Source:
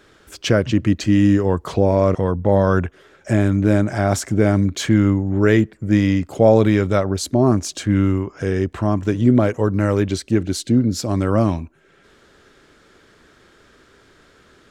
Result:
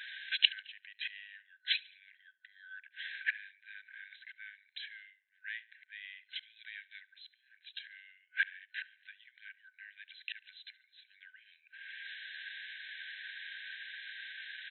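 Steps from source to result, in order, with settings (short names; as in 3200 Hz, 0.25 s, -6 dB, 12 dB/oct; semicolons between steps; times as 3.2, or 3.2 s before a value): flipped gate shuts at -16 dBFS, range -28 dB; FFT band-pass 1500–4100 Hz; feedback echo 71 ms, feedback 50%, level -22 dB; gain +11.5 dB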